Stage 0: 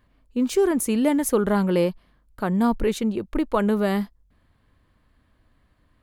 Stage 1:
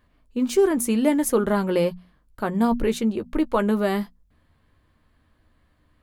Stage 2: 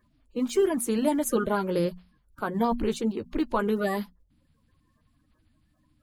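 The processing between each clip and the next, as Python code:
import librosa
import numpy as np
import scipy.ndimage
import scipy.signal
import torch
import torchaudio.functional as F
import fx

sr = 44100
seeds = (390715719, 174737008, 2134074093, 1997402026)

y1 = fx.hum_notches(x, sr, base_hz=60, count=4)
y1 = fx.doubler(y1, sr, ms=13.0, db=-9.5)
y2 = fx.spec_quant(y1, sr, step_db=30)
y2 = F.gain(torch.from_numpy(y2), -4.0).numpy()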